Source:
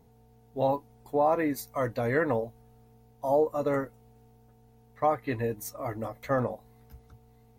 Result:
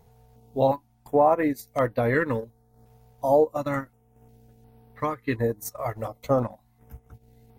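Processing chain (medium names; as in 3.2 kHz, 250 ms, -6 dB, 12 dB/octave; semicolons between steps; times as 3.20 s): transient shaper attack +2 dB, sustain -10 dB; step-sequenced notch 2.8 Hz 280–6800 Hz; trim +5 dB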